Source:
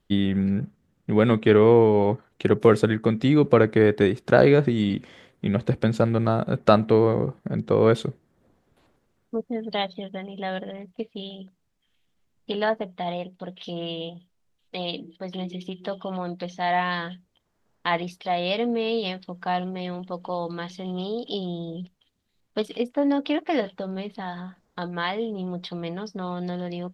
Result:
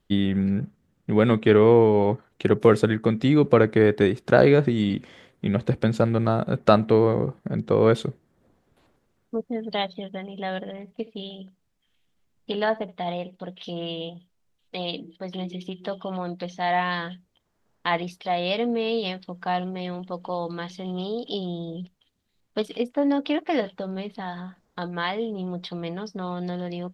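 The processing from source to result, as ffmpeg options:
-filter_complex "[0:a]asettb=1/sr,asplit=3[s0][s1][s2];[s0]atrim=end=10.704[s3];[s1]atrim=start=10.7:end=13.43,asetpts=PTS-STARTPTS,afade=t=in:d=0.004:c=qsin,afade=t=out:st=2.726:d=0.004:c=qsin,aecho=1:1:74:0.0841,atrim=end_sample=120393[s4];[s2]atrim=start=13.426[s5];[s3][s4]acrossfade=d=0.004:c1=hsin:c2=qsin[s6];[s6][s5]acrossfade=d=0.004:c1=qsin:c2=hsin"

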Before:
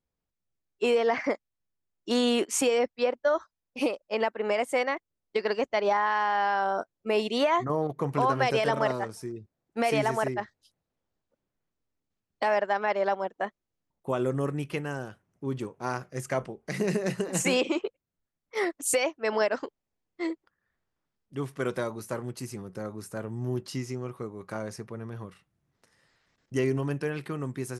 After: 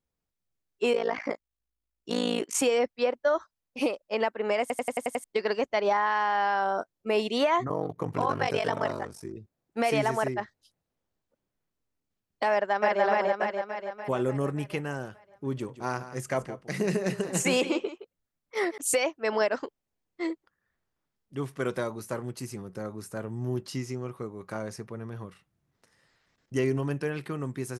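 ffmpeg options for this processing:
-filter_complex "[0:a]asettb=1/sr,asplit=3[s0][s1][s2];[s0]atrim=end=0.934[s3];[s1]atrim=start=0.93:end=2.55,asetpts=PTS-STARTPTS,afade=t=in:d=0.004:c=qsin,afade=t=out:st=1.616:d=0.004:c=qsin,tremolo=f=55:d=0.919[s4];[s2]atrim=start=2.546[s5];[s3][s4]acrossfade=d=0.004:c1=hsin:c2=qsin[s6];[s6][s5]acrossfade=d=0.004:c1=qsin:c2=hsin,asettb=1/sr,asplit=3[s7][s8][s9];[s7]atrim=end=7.684[s10];[s8]atrim=start=7.68:end=9.37,asetpts=PTS-STARTPTS,afade=t=in:d=0.004:c=qsin,afade=t=out:st=1.686:d=0.004:c=qsin,aeval=exprs='val(0)*sin(2*PI*24*n/s)':c=same[s11];[s9]atrim=start=9.366[s12];[s10][s11]acrossfade=d=0.004:c1=hsin:c2=qsin[s13];[s13][s12]acrossfade=d=0.004:c1=qsin:c2=hsin,asplit=2[s14][s15];[s15]afade=t=in:st=12.53:d=0.01,afade=t=out:st=13.03:d=0.01,aecho=0:1:290|580|870|1160|1450|1740|2030|2320|2610:0.944061|0.566437|0.339862|0.203917|0.12235|0.0734102|0.0440461|0.0264277|0.0158566[s16];[s14][s16]amix=inputs=2:normalize=0,asettb=1/sr,asplit=3[s17][s18][s19];[s17]atrim=end=15.524[s20];[s18]atrim=start=15.52:end=18.78,asetpts=PTS-STARTPTS,afade=t=in:d=0.004:c=qsin,afade=t=out:st=3.256:d=0.004:c=qsin,aecho=1:1:167:0.211,atrim=end_sample=143766[s21];[s19]atrim=start=18.776[s22];[s20][s21]acrossfade=d=0.004:c1=hsin:c2=qsin[s23];[s23][s22]acrossfade=d=0.004:c1=qsin:c2=hsin,asplit=8[s24][s25][s26][s27][s28][s29][s30][s31];[s24]atrim=end=4.702[s32];[s25]atrim=start=4.608:end=4.702[s33];[s26]atrim=start=4.608:end=4.702[s34];[s27]atrim=start=4.608:end=4.702[s35];[s28]atrim=start=4.608:end=4.702[s36];[s29]atrim=start=4.608:end=4.702[s37];[s30]atrim=start=4.608:end=4.702[s38];[s31]atrim=start=5.238[s39];[s32][s33]acrossfade=d=0.004:c1=hsin:c2=hsin[s40];[s40][s34]acrossfade=d=0.004:c1=hsin:c2=hsin[s41];[s41][s35]acrossfade=d=0.004:c1=hsin:c2=hsin[s42];[s42][s36]acrossfade=d=0.004:c1=hsin:c2=hsin[s43];[s43][s37]acrossfade=d=0.004:c1=hsin:c2=hsin[s44];[s44][s38]acrossfade=d=0.004:c1=hsin:c2=hsin[s45];[s45][s39]acrossfade=d=0.004:c1=hsin:c2=hsin"

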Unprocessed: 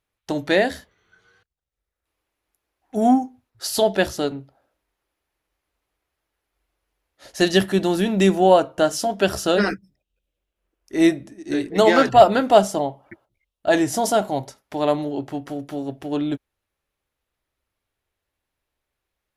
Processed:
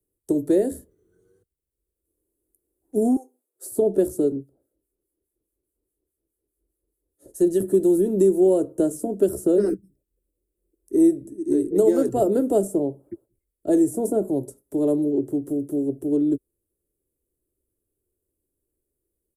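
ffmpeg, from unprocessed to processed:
-filter_complex "[0:a]asettb=1/sr,asplit=3[s0][s1][s2];[s0]atrim=end=3.164[s3];[s1]atrim=start=3.16:end=3.65,asetpts=PTS-STARTPTS,afade=t=in:d=0.004:c=qsin,afade=t=out:st=0.486:d=0.004:c=qsin,highpass=f=480:w=0.5412,highpass=f=480:w=1.3066[s4];[s2]atrim=start=3.646[s5];[s3][s4]acrossfade=d=0.004:c1=hsin:c2=qsin[s6];[s6][s5]acrossfade=d=0.004:c1=qsin:c2=hsin,asettb=1/sr,asplit=3[s7][s8][s9];[s7]atrim=end=4.364[s10];[s8]atrim=start=4.36:end=7.6,asetpts=PTS-STARTPTS,afade=t=in:d=0.004:c=qsin,afade=t=out:st=3.236:d=0.004:c=qsin,acrossover=split=1200[s11][s12];[s11]aeval=exprs='val(0)*(1-0.7/2+0.7/2*cos(2*PI*4.8*n/s))':c=same[s13];[s12]aeval=exprs='val(0)*(1-0.7/2-0.7/2*cos(2*PI*4.8*n/s))':c=same[s14];[s13][s14]amix=inputs=2:normalize=0[s15];[s9]atrim=start=7.596[s16];[s10][s15]acrossfade=d=0.004:c1=hsin:c2=qsin[s17];[s17][s16]acrossfade=d=0.004:c1=qsin:c2=hsin,firequalizer=gain_entry='entry(210,0);entry(360,10);entry(750,-18);entry(2300,-29);entry(5200,-20);entry(8200,5)':delay=0.05:min_phase=1,acrossover=split=96|210|470|1900[s18][s19][s20][s21][s22];[s18]acompressor=threshold=0.00398:ratio=4[s23];[s19]acompressor=threshold=0.0158:ratio=4[s24];[s20]acompressor=threshold=0.0708:ratio=4[s25];[s21]acompressor=threshold=0.0891:ratio=4[s26];[s22]acompressor=threshold=0.0112:ratio=4[s27];[s23][s24][s25][s26][s27]amix=inputs=5:normalize=0,volume=1.12"

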